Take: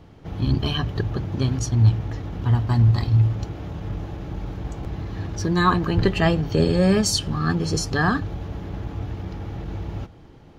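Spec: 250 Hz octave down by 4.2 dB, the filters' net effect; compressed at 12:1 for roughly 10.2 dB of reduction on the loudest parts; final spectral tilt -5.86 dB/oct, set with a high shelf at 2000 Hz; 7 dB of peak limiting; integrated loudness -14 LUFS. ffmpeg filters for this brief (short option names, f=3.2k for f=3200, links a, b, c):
-af "equalizer=f=250:t=o:g=-7,highshelf=f=2k:g=-4.5,acompressor=threshold=-23dB:ratio=12,volume=18dB,alimiter=limit=-3.5dB:level=0:latency=1"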